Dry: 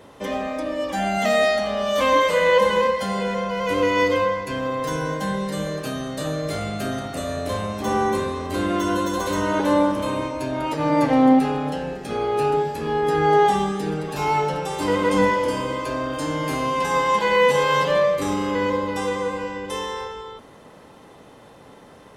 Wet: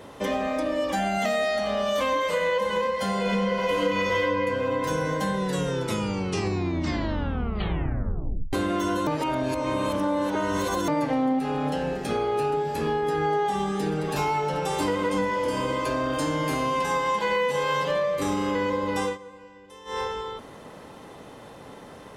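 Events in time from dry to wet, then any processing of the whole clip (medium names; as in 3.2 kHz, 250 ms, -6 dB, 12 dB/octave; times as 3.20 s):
3.21–4.20 s: reverb throw, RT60 2.4 s, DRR -8 dB
5.34 s: tape stop 3.19 s
9.07–10.88 s: reverse
19.03–20.00 s: dip -21 dB, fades 0.15 s
whole clip: compression, threshold -25 dBFS; trim +2.5 dB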